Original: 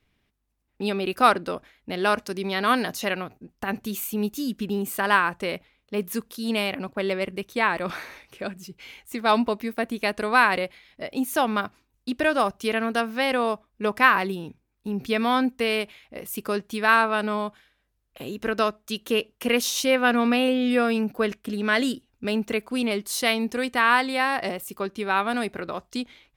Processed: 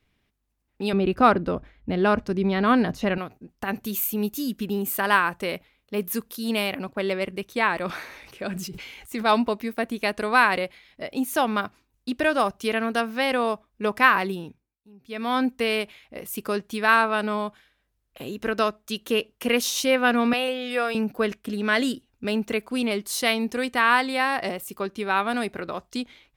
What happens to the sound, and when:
0.93–3.18 s: RIAA curve playback
3.73–6.84 s: peaking EQ 14 kHz +8 dB 0.54 oct
8.08–9.34 s: decay stretcher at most 32 dB/s
14.39–15.43 s: dip -22.5 dB, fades 0.39 s
20.33–20.95 s: high-pass 500 Hz

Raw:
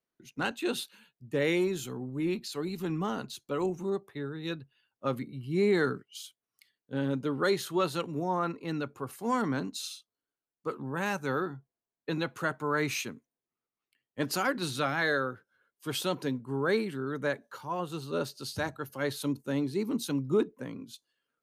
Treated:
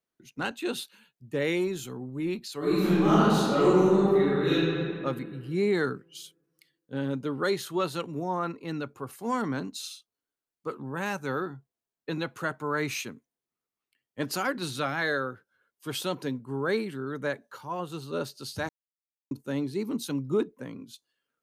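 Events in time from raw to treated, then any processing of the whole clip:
2.58–4.59 s: reverb throw, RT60 2.2 s, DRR -11.5 dB
18.69–19.31 s: mute

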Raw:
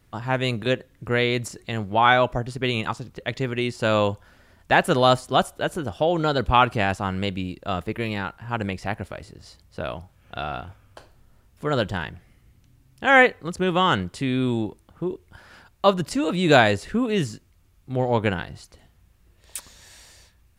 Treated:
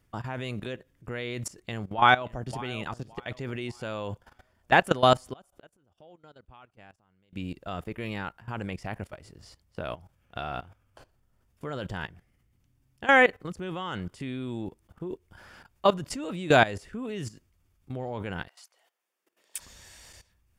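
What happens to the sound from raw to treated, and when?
1.51–2.56 s: echo throw 570 ms, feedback 40%, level -16 dB
5.33–7.33 s: inverted gate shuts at -24 dBFS, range -28 dB
18.47–19.57 s: high-pass 810 Hz -> 230 Hz 24 dB/octave
whole clip: level held to a coarse grid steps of 17 dB; band-stop 4 kHz, Q 10

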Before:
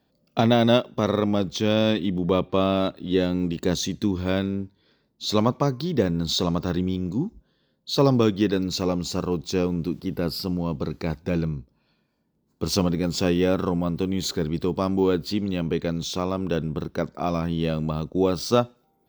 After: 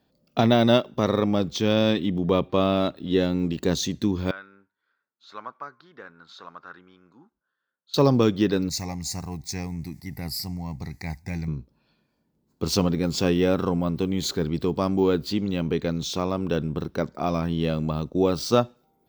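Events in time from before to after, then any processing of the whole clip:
4.31–7.94 s: band-pass filter 1.4 kHz, Q 5
8.69–11.48 s: FFT filter 110 Hz 0 dB, 510 Hz -19 dB, 770 Hz 0 dB, 1.4 kHz -17 dB, 2 kHz +9 dB, 3.1 kHz -18 dB, 4.5 kHz -1 dB, 9 kHz +8 dB, 16 kHz +3 dB

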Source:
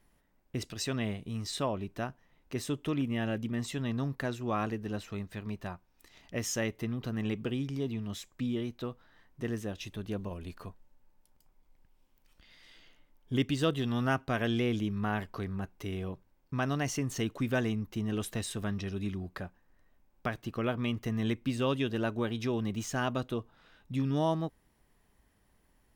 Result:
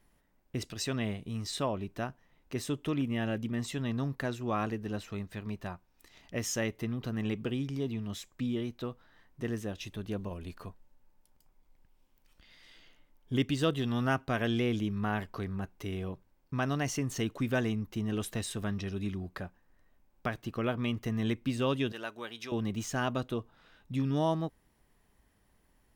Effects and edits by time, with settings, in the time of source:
21.92–22.52 s: high-pass 1.3 kHz 6 dB/octave

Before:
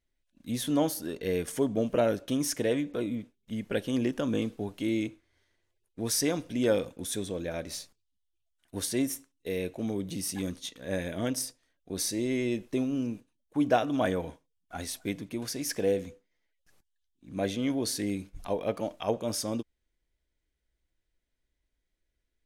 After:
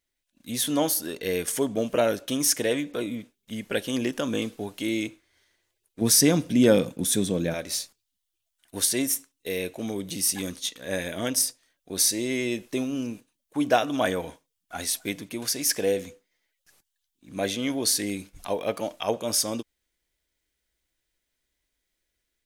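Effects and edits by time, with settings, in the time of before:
6.01–7.54 s: peaking EQ 170 Hz +13.5 dB 1.9 oct
whole clip: tilt EQ +2 dB/octave; level rider gain up to 3.5 dB; trim +1 dB

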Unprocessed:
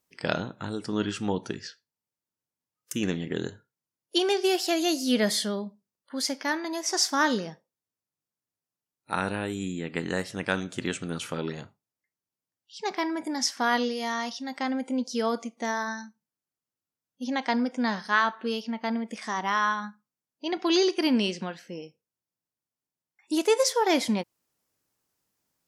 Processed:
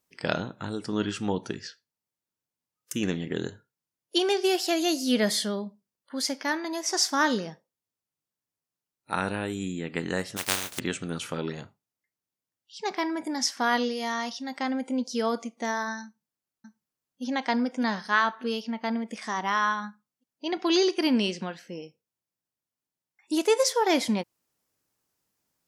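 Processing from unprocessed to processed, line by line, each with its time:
10.36–10.78 s: spectral contrast reduction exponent 0.15
16.04–17.23 s: echo throw 600 ms, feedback 35%, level -2 dB

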